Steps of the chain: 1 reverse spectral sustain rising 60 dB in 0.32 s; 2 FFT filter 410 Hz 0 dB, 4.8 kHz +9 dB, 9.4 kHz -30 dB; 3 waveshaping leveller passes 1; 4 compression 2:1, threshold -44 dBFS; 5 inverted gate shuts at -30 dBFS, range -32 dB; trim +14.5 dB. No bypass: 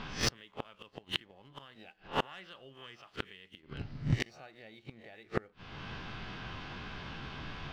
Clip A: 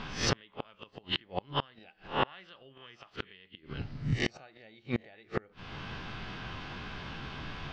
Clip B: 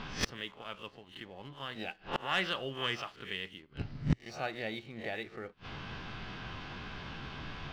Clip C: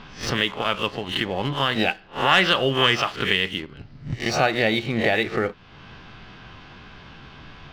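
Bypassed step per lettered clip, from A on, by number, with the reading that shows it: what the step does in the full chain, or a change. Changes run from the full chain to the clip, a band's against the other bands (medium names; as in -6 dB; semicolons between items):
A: 3, crest factor change -3.5 dB; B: 4, mean gain reduction 11.5 dB; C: 5, momentary loudness spread change -8 LU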